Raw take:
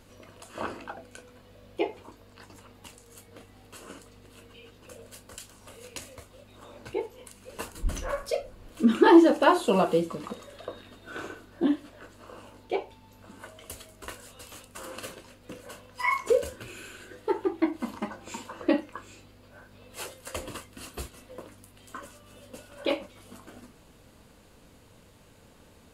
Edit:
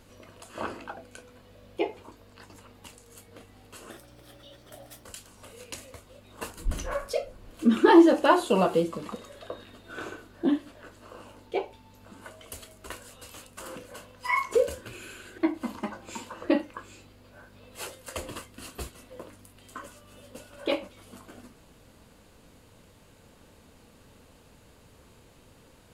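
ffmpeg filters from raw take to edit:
ffmpeg -i in.wav -filter_complex "[0:a]asplit=6[link_01][link_02][link_03][link_04][link_05][link_06];[link_01]atrim=end=3.904[link_07];[link_02]atrim=start=3.9:end=5.27,asetpts=PTS-STARTPTS,asetrate=53361,aresample=44100,atrim=end_sample=49931,asetpts=PTS-STARTPTS[link_08];[link_03]atrim=start=5.266:end=6.652[link_09];[link_04]atrim=start=7.588:end=14.942[link_10];[link_05]atrim=start=15.508:end=17.132[link_11];[link_06]atrim=start=17.568[link_12];[link_07][link_08]acrossfade=duration=0.004:curve1=hsin:curve2=hsin[link_13];[link_13][link_09]acrossfade=duration=0.004:curve1=hsin:curve2=hsin[link_14];[link_14][link_10]acrossfade=duration=0.004:curve1=hsin:curve2=hsin[link_15];[link_15][link_11]acrossfade=duration=0.004:curve1=hsin:curve2=hsin[link_16];[link_16][link_12]acrossfade=duration=0.004:curve1=hsin:curve2=hsin" out.wav

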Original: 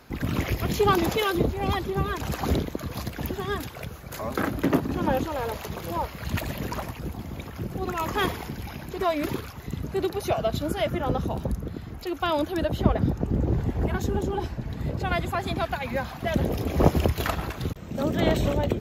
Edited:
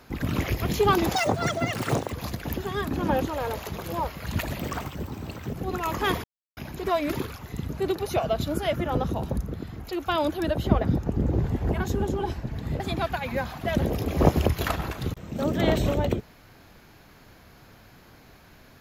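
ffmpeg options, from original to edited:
ffmpeg -i in.wav -filter_complex "[0:a]asplit=9[link_01][link_02][link_03][link_04][link_05][link_06][link_07][link_08][link_09];[link_01]atrim=end=1.144[link_10];[link_02]atrim=start=1.14:end=2.86,asetpts=PTS-STARTPTS,asetrate=76734,aresample=44100,atrim=end_sample=43593,asetpts=PTS-STARTPTS[link_11];[link_03]atrim=start=2.856:end=3.612[link_12];[link_04]atrim=start=4.858:end=6.584[link_13];[link_05]atrim=start=6.58:end=7.68,asetpts=PTS-STARTPTS,asetrate=51597,aresample=44100[link_14];[link_06]atrim=start=7.676:end=8.38,asetpts=PTS-STARTPTS,afade=type=out:start_time=0.7:duration=0.004:curve=hsin[link_15];[link_07]atrim=start=8.38:end=8.71,asetpts=PTS-STARTPTS,volume=0[link_16];[link_08]atrim=start=8.71:end=14.942,asetpts=PTS-STARTPTS,afade=type=in:duration=0.004:curve=hsin[link_17];[link_09]atrim=start=15.388[link_18];[link_10][link_11]acrossfade=duration=0.004:curve1=hsin:curve2=hsin[link_19];[link_19][link_12]acrossfade=duration=0.004:curve1=hsin:curve2=hsin[link_20];[link_20][link_13]acrossfade=duration=0.004:curve1=hsin:curve2=hsin[link_21];[link_21][link_14]acrossfade=duration=0.004:curve1=hsin:curve2=hsin[link_22];[link_15][link_16][link_17]concat=n=3:v=0:a=1[link_23];[link_22][link_23]acrossfade=duration=0.004:curve1=hsin:curve2=hsin[link_24];[link_24][link_18]acrossfade=duration=0.004:curve1=hsin:curve2=hsin" out.wav

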